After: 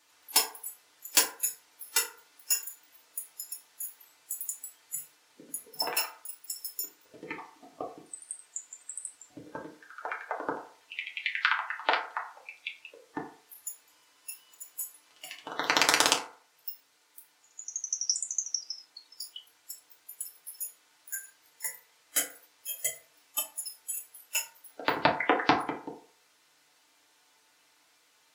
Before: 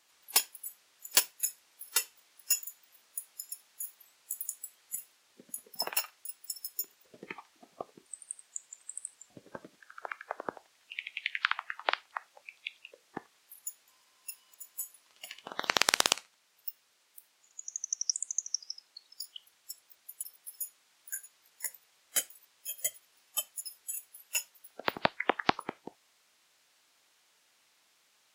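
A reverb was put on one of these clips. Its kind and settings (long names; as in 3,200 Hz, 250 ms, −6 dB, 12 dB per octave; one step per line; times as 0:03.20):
feedback delay network reverb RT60 0.48 s, low-frequency decay 0.75×, high-frequency decay 0.45×, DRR −2.5 dB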